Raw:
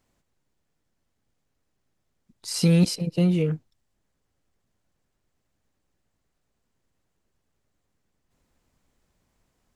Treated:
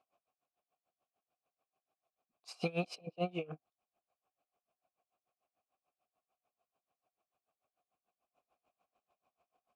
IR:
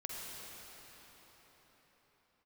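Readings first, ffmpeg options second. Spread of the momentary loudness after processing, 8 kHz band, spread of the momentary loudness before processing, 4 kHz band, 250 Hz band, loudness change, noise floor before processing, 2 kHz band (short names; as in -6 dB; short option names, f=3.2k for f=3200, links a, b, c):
16 LU, -25.0 dB, 14 LU, -16.5 dB, -20.0 dB, -17.0 dB, -76 dBFS, -7.0 dB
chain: -filter_complex "[0:a]asplit=3[a][b][c];[a]bandpass=f=730:t=q:w=8,volume=0dB[d];[b]bandpass=f=1.09k:t=q:w=8,volume=-6dB[e];[c]bandpass=f=2.44k:t=q:w=8,volume=-9dB[f];[d][e][f]amix=inputs=3:normalize=0,aeval=exprs='val(0)*pow(10,-24*(0.5-0.5*cos(2*PI*6.8*n/s))/20)':c=same,volume=10.5dB"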